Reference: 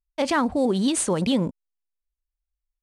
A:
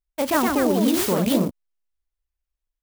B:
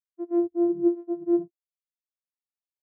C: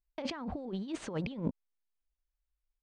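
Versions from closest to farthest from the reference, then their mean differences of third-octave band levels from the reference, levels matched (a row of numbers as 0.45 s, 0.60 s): C, A, B; 6.5 dB, 9.0 dB, 18.0 dB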